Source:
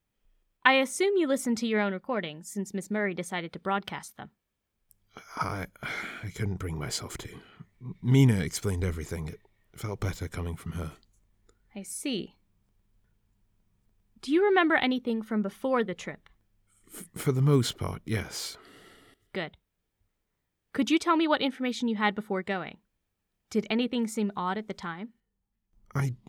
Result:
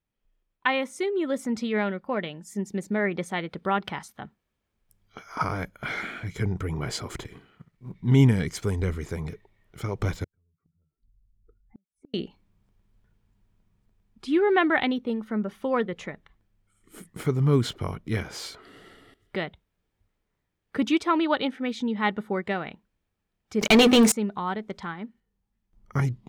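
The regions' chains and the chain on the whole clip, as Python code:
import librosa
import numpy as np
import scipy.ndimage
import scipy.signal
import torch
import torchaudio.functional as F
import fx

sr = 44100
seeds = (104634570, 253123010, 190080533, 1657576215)

y = fx.chain(x, sr, fx.law_mismatch(coded='A'),
    fx.room_flutter(wall_m=11.4, rt60_s=0.33), at=(7.24, 7.94))
y = fx.chain(y, sr, fx.spec_expand(power=1.9),
    fx.lowpass(hz=1400.0, slope=12),
    fx.gate_flip(shuts_db=-39.0, range_db=-41), at=(10.24, 12.14))
y = fx.chain(y, sr, fx.bass_treble(bass_db=-8, treble_db=13),
    fx.hum_notches(base_hz=50, count=9),
    fx.leveller(passes=5), at=(23.61, 24.12))
y = fx.high_shelf(y, sr, hz=5600.0, db=-9.5)
y = fx.rider(y, sr, range_db=4, speed_s=2.0)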